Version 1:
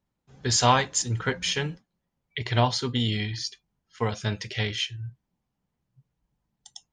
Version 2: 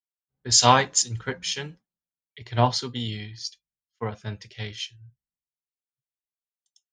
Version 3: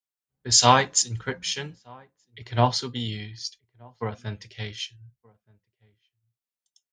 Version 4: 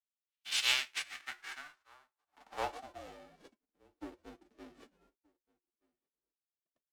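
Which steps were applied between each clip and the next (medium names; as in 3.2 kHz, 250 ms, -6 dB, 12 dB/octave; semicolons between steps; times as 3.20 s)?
dynamic bell 5.2 kHz, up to +4 dB, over -41 dBFS, Q 1.2; three bands expanded up and down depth 100%; trim -5.5 dB
echo from a far wall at 210 m, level -27 dB
formants flattened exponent 0.1; band-pass sweep 3.1 kHz -> 500 Hz, 0.60–3.55 s; frequency shift -160 Hz; trim -5.5 dB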